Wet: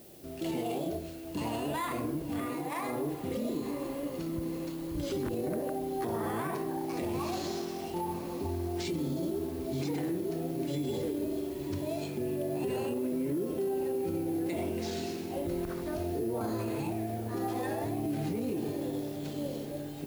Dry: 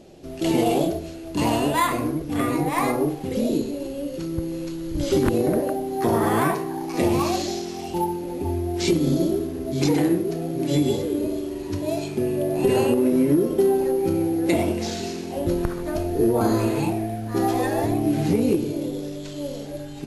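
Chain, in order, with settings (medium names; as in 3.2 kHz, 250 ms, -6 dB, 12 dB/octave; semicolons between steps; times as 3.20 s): high-pass 44 Hz; on a send: echo that smears into a reverb 1031 ms, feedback 43%, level -15 dB; on the sum: peak limiter -18.5 dBFS, peak gain reduction 10.5 dB; 2.46–2.89 s: bass shelf 140 Hz -11.5 dB; added noise blue -49 dBFS; peaking EQ 6.5 kHz -3 dB 0.77 oct; trim -7 dB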